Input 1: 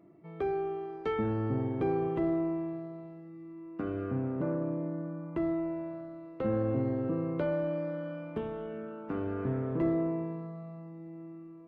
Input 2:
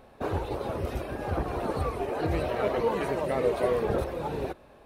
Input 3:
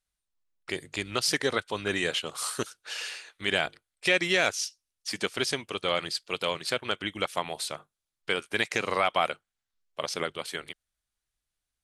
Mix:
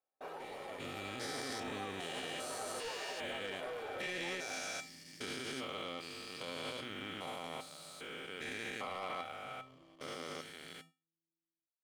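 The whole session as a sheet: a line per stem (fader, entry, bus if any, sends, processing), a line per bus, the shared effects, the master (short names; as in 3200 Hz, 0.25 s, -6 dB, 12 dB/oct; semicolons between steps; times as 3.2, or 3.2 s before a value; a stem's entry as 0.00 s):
-11.5 dB, 0.00 s, no send, bell 140 Hz +8 dB 2.9 oct; compressor 6:1, threshold -32 dBFS, peak gain reduction 11.5 dB; cascading flanger falling 0.69 Hz
+2.0 dB, 0.00 s, no send, HPF 440 Hz 24 dB/oct; soft clip -28.5 dBFS, distortion -11 dB
-1.0 dB, 0.00 s, no send, stepped spectrum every 0.4 s; sample leveller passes 2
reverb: off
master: gate -47 dBFS, range -29 dB; resonator 260 Hz, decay 0.3 s, harmonics odd, mix 80%; limiter -32 dBFS, peak gain reduction 6.5 dB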